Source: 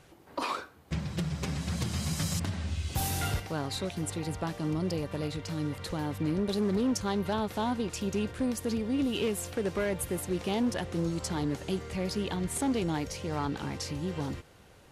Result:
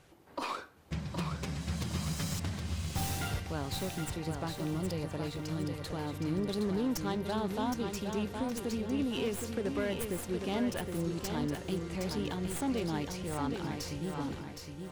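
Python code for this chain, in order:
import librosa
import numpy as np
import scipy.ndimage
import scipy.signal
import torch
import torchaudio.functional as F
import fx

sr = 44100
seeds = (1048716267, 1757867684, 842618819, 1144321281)

p1 = fx.tracing_dist(x, sr, depth_ms=0.054)
p2 = p1 + fx.echo_feedback(p1, sr, ms=766, feedback_pct=36, wet_db=-6, dry=0)
y = F.gain(torch.from_numpy(p2), -4.0).numpy()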